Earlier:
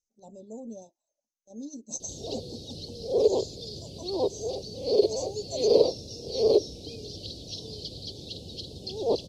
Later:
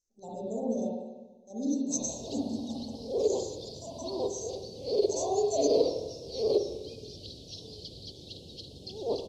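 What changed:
background -6.5 dB; reverb: on, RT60 1.2 s

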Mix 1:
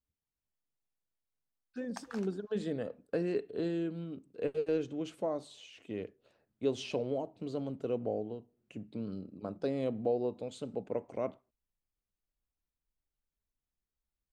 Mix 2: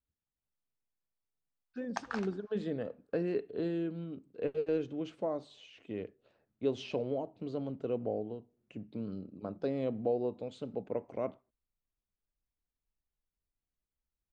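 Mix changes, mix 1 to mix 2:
background +9.0 dB; master: add distance through air 120 m

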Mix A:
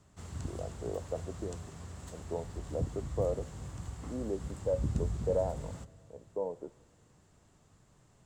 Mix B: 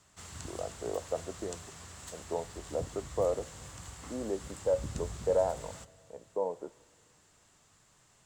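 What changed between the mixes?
speech +5.5 dB; master: add tilt shelf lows -7.5 dB, about 770 Hz

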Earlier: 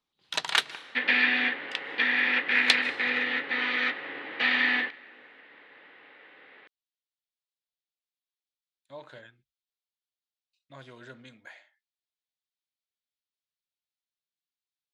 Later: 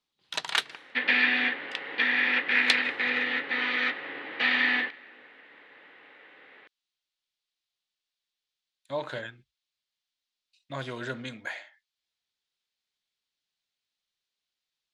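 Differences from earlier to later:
speech +12.0 dB; first sound: send -10.0 dB

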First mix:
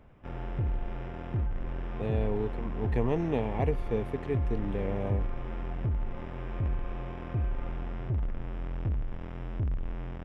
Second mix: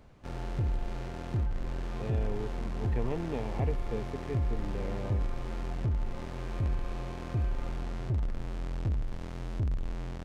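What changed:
speech -6.0 dB; background: remove Savitzky-Golay filter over 25 samples

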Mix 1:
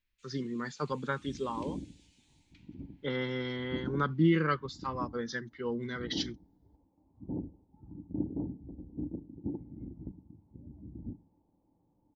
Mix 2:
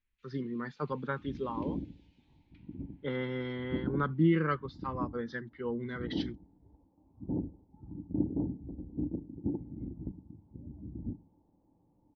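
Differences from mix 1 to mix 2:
second sound +3.5 dB; master: add distance through air 310 m

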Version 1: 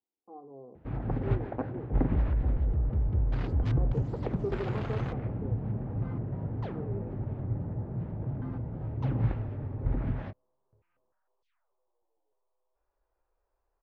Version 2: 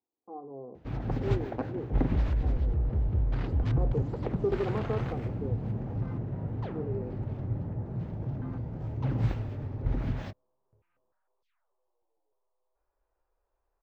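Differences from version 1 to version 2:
speech +5.0 dB; first sound: remove low-pass 2 kHz 12 dB/octave

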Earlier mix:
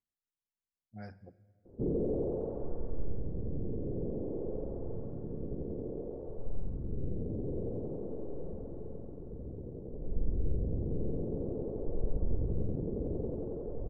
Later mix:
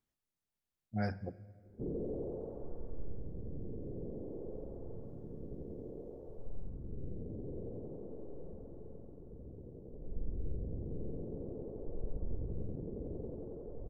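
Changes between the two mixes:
speech +11.0 dB; background -7.0 dB

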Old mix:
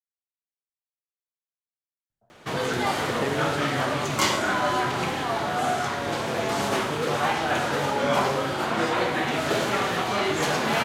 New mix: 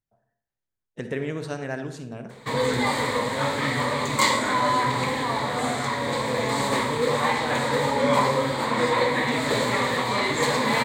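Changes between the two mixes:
speech: entry -2.10 s; background: add rippled EQ curve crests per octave 1, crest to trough 12 dB

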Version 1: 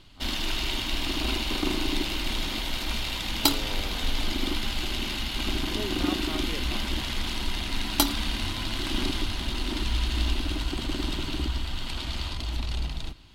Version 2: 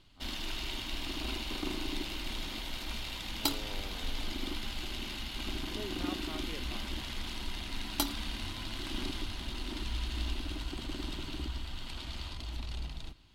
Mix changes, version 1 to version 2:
speech -7.0 dB; background -9.0 dB

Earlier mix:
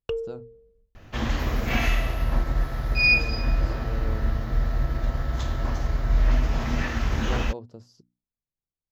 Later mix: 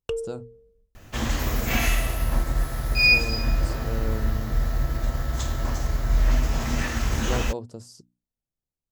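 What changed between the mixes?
speech +4.5 dB; master: remove boxcar filter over 5 samples

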